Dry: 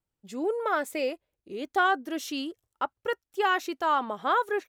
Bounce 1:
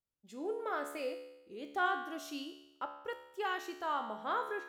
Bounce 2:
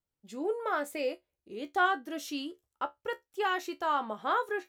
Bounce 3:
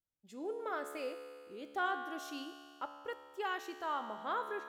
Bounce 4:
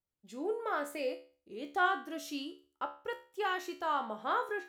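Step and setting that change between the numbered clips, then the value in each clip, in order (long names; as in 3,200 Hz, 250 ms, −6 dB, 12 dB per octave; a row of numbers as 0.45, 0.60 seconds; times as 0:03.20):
tuned comb filter, decay: 0.91, 0.15, 2.2, 0.38 seconds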